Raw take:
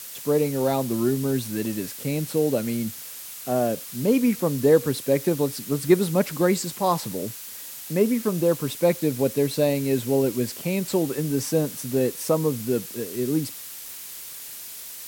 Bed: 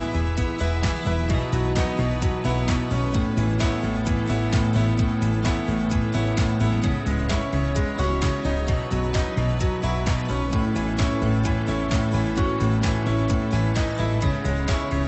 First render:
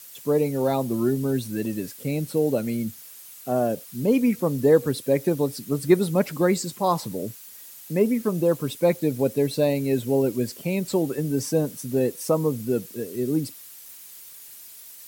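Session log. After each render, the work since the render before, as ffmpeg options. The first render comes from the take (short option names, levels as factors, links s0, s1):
-af "afftdn=nr=9:nf=-39"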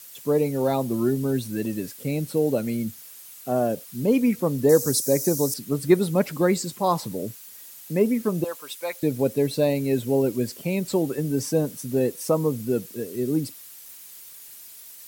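-filter_complex "[0:a]asettb=1/sr,asplit=3[s0][s1][s2];[s0]atrim=end=4.694[s3];[s1]atrim=start=4.69:end=5.54,asetpts=PTS-STARTPTS,afade=t=in:d=0.004:c=qsin,afade=t=out:st=0.846:d=0.004:c=qsin,highshelf=f=4300:t=q:w=3:g=11.5[s4];[s2]atrim=start=5.536[s5];[s3][s4]acrossfade=d=0.004:c1=hsin:c2=qsin[s6];[s6][s5]acrossfade=d=0.004:c1=qsin:c2=hsin,asettb=1/sr,asplit=3[s7][s8][s9];[s7]atrim=end=8.444[s10];[s8]atrim=start=8.44:end=9.03,asetpts=PTS-STARTPTS,afade=t=in:d=0.004:c=qsin,afade=t=out:st=0.586:d=0.004:c=qsin,highpass=950[s11];[s9]atrim=start=9.026[s12];[s10][s11]acrossfade=d=0.004:c1=hsin:c2=qsin[s13];[s13][s12]acrossfade=d=0.004:c1=qsin:c2=hsin"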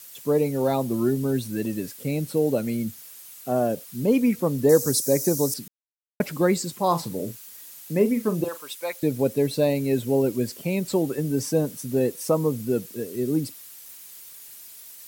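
-filter_complex "[0:a]asettb=1/sr,asplit=3[s0][s1][s2];[s0]atrim=end=6.874[s3];[s1]atrim=start=6.87:end=8.67,asetpts=PTS-STARTPTS,afade=t=in:d=0.004:c=qsin,afade=t=out:st=1.796:d=0.004:c=qsin,asplit=2[s4][s5];[s5]adelay=42,volume=0.266[s6];[s4][s6]amix=inputs=2:normalize=0,atrim=end_sample=79380[s7];[s2]atrim=start=8.666[s8];[s3][s7]acrossfade=d=0.004:c1=hsin:c2=qsin[s9];[s9][s8]acrossfade=d=0.004:c1=qsin:c2=hsin,asplit=3[s10][s11][s12];[s10]atrim=end=5.68,asetpts=PTS-STARTPTS,afade=t=out:st=5.676:d=0.004:c=hsin[s13];[s11]atrim=start=5.68:end=6.2,asetpts=PTS-STARTPTS,volume=0[s14];[s12]atrim=start=6.2,asetpts=PTS-STARTPTS,afade=t=in:d=0.004:c=hsin[s15];[s13][s14][s15]concat=n=3:v=0:a=1"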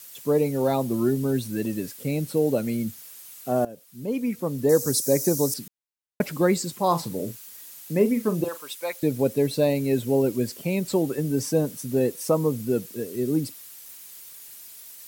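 -filter_complex "[0:a]asplit=2[s0][s1];[s0]atrim=end=3.65,asetpts=PTS-STARTPTS,afade=t=out:st=3.646:d=0.004:c=hsin:silence=0.141254[s2];[s1]atrim=start=3.65,asetpts=PTS-STARTPTS,afade=t=in:d=1.45:silence=0.141254[s3];[s2][s3]concat=n=2:v=0:a=1"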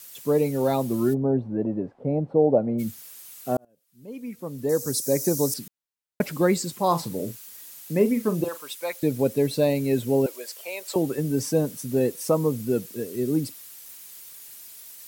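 -filter_complex "[0:a]asplit=3[s0][s1][s2];[s0]afade=t=out:st=1.13:d=0.02[s3];[s1]lowpass=f=760:t=q:w=3.1,afade=t=in:st=1.13:d=0.02,afade=t=out:st=2.78:d=0.02[s4];[s2]afade=t=in:st=2.78:d=0.02[s5];[s3][s4][s5]amix=inputs=3:normalize=0,asettb=1/sr,asplit=3[s6][s7][s8];[s6]atrim=end=10.264[s9];[s7]atrim=start=10.26:end=10.96,asetpts=PTS-STARTPTS,afade=t=in:d=0.004:c=qsin,afade=t=out:st=0.696:d=0.004:c=qsin,highpass=f=560:w=0.5412,highpass=f=560:w=1.3066[s10];[s8]atrim=start=10.956[s11];[s9][s10]acrossfade=d=0.004:c1=hsin:c2=qsin[s12];[s12][s11]acrossfade=d=0.004:c1=qsin:c2=hsin,asplit=2[s13][s14];[s13]atrim=end=3.57,asetpts=PTS-STARTPTS,afade=t=out:st=3.566:d=0.004:c=hsin[s15];[s14]atrim=start=3.57,asetpts=PTS-STARTPTS,afade=t=in:d=1.92[s16];[s15][s16]concat=n=2:v=0:a=1"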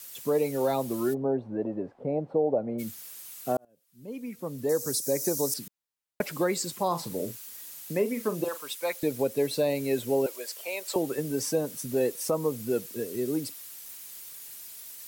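-filter_complex "[0:a]acrossover=split=360[s0][s1];[s0]acompressor=threshold=0.0141:ratio=4[s2];[s1]alimiter=limit=0.126:level=0:latency=1:release=189[s3];[s2][s3]amix=inputs=2:normalize=0"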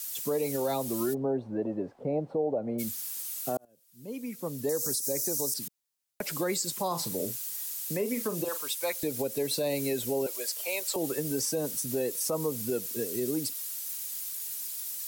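-filter_complex "[0:a]acrossover=split=370|680|4000[s0][s1][s2][s3];[s3]acontrast=89[s4];[s0][s1][s2][s4]amix=inputs=4:normalize=0,alimiter=limit=0.0944:level=0:latency=1:release=102"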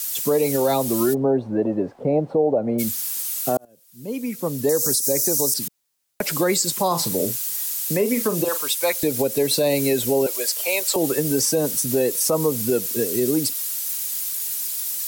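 -af "volume=3.16"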